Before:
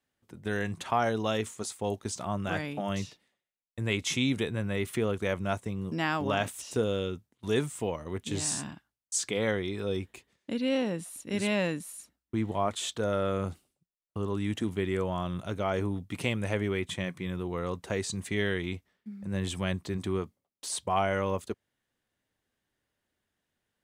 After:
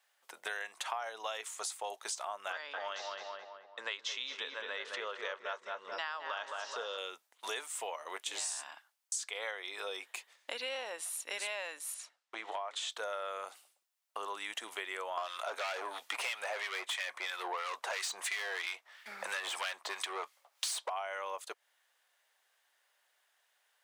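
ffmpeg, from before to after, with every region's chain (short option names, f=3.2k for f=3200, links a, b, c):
-filter_complex "[0:a]asettb=1/sr,asplit=3[a][b][c];[a]atrim=end=2.524[d];[b]atrim=start=2.52:end=6.98,asetpts=PTS-STARTPTS,afade=t=in:d=0.004:c=qsin,afade=t=out:st=4.456:d=0.004:c=qsin,highpass=110,equalizer=f=190:t=q:w=4:g=-5,equalizer=f=330:t=q:w=4:g=-7,equalizer=f=730:t=q:w=4:g=-9,equalizer=f=2.3k:t=q:w=4:g=-9,lowpass=f=5.3k:w=0.5412,lowpass=f=5.3k:w=1.3066,asplit=2[e][f];[f]adelay=215,lowpass=f=2k:p=1,volume=-4.5dB,asplit=2[g][h];[h]adelay=215,lowpass=f=2k:p=1,volume=0.48,asplit=2[i][j];[j]adelay=215,lowpass=f=2k:p=1,volume=0.48,asplit=2[k][l];[l]adelay=215,lowpass=f=2k:p=1,volume=0.48,asplit=2[m][n];[n]adelay=215,lowpass=f=2k:p=1,volume=0.48,asplit=2[o][p];[p]adelay=215,lowpass=f=2k:p=1,volume=0.48[q];[e][g][i][k][m][o][q]amix=inputs=7:normalize=0,atrim=end_sample=196686[r];[c]atrim=start=6.976[s];[d][r]acrossfade=d=0.004:c1=hsin:c2=qsin[t];[t][s]acrossfade=d=0.004:c1=qsin:c2=hsin,asettb=1/sr,asplit=3[u][v][w];[u]atrim=end=11.944[x];[v]atrim=start=11.94:end=12.9,asetpts=PTS-STARTPTS,afade=t=in:d=0.004:c=qsin,afade=t=out:st=0.956:d=0.004:c=qsin,bandreject=f=60:t=h:w=6,bandreject=f=120:t=h:w=6,bandreject=f=180:t=h:w=6,bandreject=f=240:t=h:w=6,bandreject=f=300:t=h:w=6,bandreject=f=360:t=h:w=6,bandreject=f=420:t=h:w=6,bandreject=f=480:t=h:w=6,bandreject=f=540:t=h:w=6,acompressor=threshold=-30dB:ratio=4:attack=3.2:release=140:knee=1:detection=peak,highpass=250,lowpass=6.1k[y];[w]atrim=start=12.896[z];[x][y]acrossfade=d=0.004:c1=hsin:c2=qsin[aa];[aa][z]acrossfade=d=0.004:c1=qsin:c2=hsin,asettb=1/sr,asplit=3[ab][ac][ad];[ab]atrim=end=15.174[ae];[ac]atrim=start=15.17:end=20.9,asetpts=PTS-STARTPTS,afade=t=in:d=0.004:c=qsin,afade=t=out:st=5.726:d=0.004:c=qsin,asplit=2[af][ag];[ag]highpass=f=720:p=1,volume=28dB,asoftclip=type=tanh:threshold=-13dB[ah];[af][ah]amix=inputs=2:normalize=0,lowpass=f=4.9k:p=1,volume=-6dB,acrossover=split=1300[ai][aj];[ai]aeval=exprs='val(0)*(1-0.7/2+0.7/2*cos(2*PI*3*n/s))':c=same[ak];[aj]aeval=exprs='val(0)*(1-0.7/2-0.7/2*cos(2*PI*3*n/s))':c=same[al];[ak][al]amix=inputs=2:normalize=0[am];[ad]atrim=start=20.896[an];[ae][am]acrossfade=d=0.004:c1=hsin:c2=qsin[ao];[ao][an]acrossfade=d=0.004:c1=qsin:c2=hsin,highpass=f=670:w=0.5412,highpass=f=670:w=1.3066,acompressor=threshold=-47dB:ratio=6,volume=10dB"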